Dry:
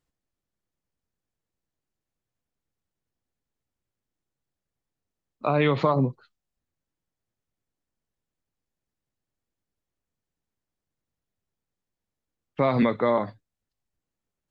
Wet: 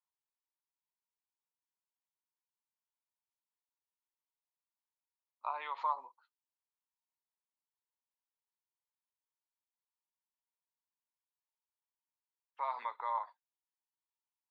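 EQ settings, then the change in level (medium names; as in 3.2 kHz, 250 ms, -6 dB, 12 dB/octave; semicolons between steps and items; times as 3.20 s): ladder high-pass 890 Hz, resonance 80%; -6.5 dB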